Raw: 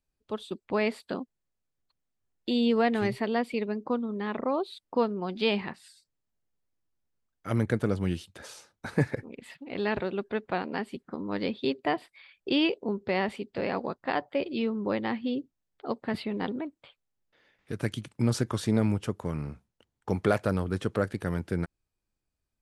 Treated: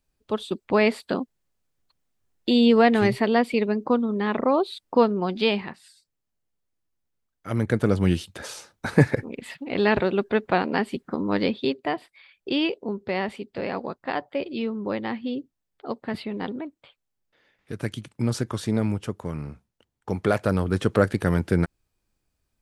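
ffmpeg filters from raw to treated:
ffmpeg -i in.wav -af "volume=22.5dB,afade=type=out:start_time=5.23:duration=0.4:silence=0.473151,afade=type=in:start_time=7.54:duration=0.56:silence=0.421697,afade=type=out:start_time=11.31:duration=0.5:silence=0.421697,afade=type=in:start_time=20.18:duration=0.87:silence=0.421697" out.wav

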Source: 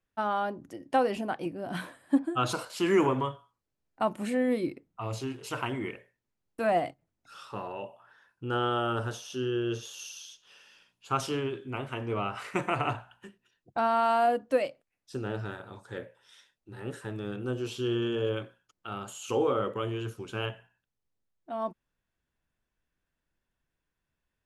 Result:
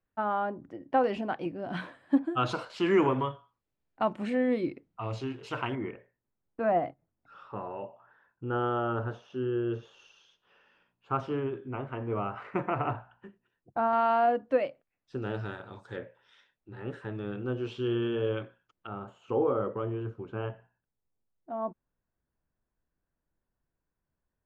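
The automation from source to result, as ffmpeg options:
ffmpeg -i in.wav -af "asetnsamples=nb_out_samples=441:pad=0,asendcmd='1.04 lowpass f 3700;5.75 lowpass f 1500;13.93 lowpass f 2400;15.22 lowpass f 5100;15.96 lowpass f 2700;18.87 lowpass f 1200',lowpass=1900" out.wav

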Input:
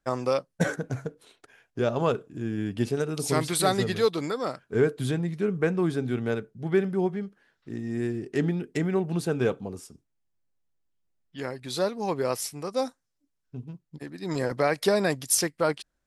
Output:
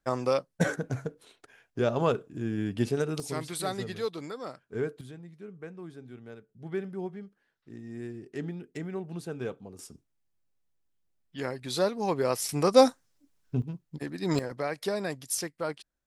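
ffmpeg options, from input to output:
ffmpeg -i in.wav -af "asetnsamples=nb_out_samples=441:pad=0,asendcmd='3.2 volume volume -9dB;5.01 volume volume -18dB;6.49 volume volume -10dB;9.79 volume volume 0dB;12.49 volume volume 9.5dB;13.62 volume volume 3dB;14.39 volume volume -8dB',volume=-1dB" out.wav

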